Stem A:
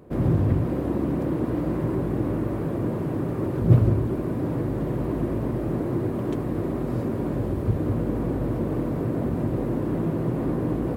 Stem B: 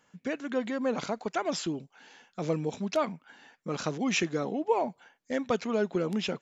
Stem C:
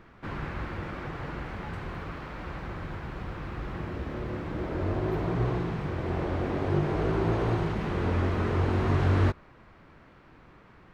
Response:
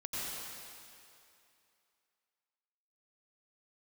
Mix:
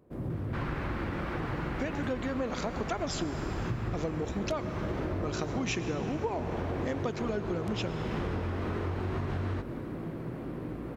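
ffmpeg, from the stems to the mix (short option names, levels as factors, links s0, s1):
-filter_complex "[0:a]volume=0.224[s0];[1:a]adelay=1550,volume=1.26,asplit=2[s1][s2];[s2]volume=0.211[s3];[2:a]acompressor=threshold=0.0355:ratio=6,adelay=300,volume=1.33,asplit=2[s4][s5];[s5]volume=0.15[s6];[3:a]atrim=start_sample=2205[s7];[s3][s6]amix=inputs=2:normalize=0[s8];[s8][s7]afir=irnorm=-1:irlink=0[s9];[s0][s1][s4][s9]amix=inputs=4:normalize=0,acompressor=threshold=0.0355:ratio=6"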